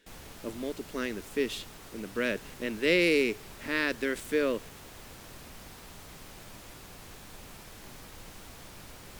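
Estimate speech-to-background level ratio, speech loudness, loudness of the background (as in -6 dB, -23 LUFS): 17.0 dB, -30.5 LUFS, -47.5 LUFS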